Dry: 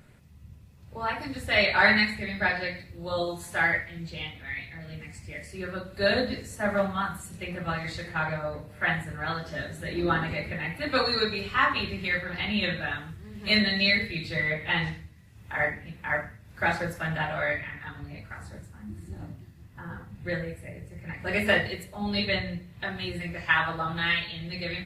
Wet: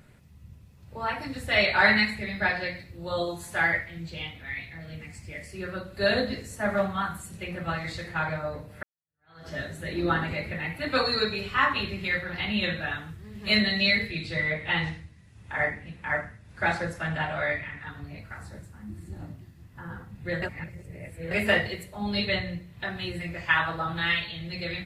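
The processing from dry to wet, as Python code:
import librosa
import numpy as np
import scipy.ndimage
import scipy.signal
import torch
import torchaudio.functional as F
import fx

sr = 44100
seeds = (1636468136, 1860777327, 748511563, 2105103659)

y = fx.steep_lowpass(x, sr, hz=11000.0, slope=72, at=(14.1, 17.88))
y = fx.edit(y, sr, fx.fade_in_span(start_s=8.83, length_s=0.65, curve='exp'),
    fx.reverse_span(start_s=20.42, length_s=0.89), tone=tone)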